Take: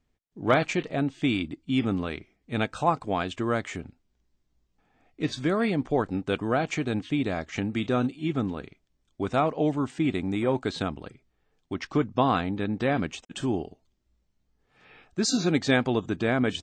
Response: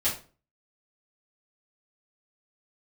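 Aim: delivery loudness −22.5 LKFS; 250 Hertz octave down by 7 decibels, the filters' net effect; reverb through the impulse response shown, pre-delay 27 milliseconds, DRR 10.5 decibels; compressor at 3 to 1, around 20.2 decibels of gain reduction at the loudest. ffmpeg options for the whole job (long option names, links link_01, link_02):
-filter_complex "[0:a]equalizer=frequency=250:width_type=o:gain=-9,acompressor=threshold=-47dB:ratio=3,asplit=2[link_01][link_02];[1:a]atrim=start_sample=2205,adelay=27[link_03];[link_02][link_03]afir=irnorm=-1:irlink=0,volume=-19.5dB[link_04];[link_01][link_04]amix=inputs=2:normalize=0,volume=23dB"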